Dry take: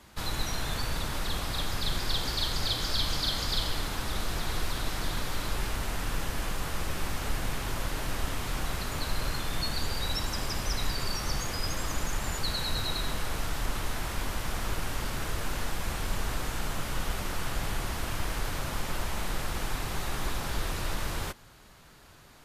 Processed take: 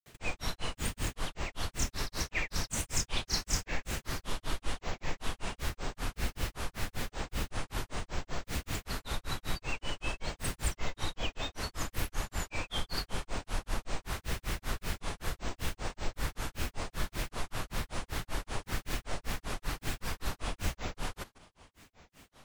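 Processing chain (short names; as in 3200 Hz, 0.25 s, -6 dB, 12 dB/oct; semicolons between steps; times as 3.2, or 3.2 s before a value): grains 0.177 s, grains 5.2/s, pitch spread up and down by 12 st; wow and flutter 24 cents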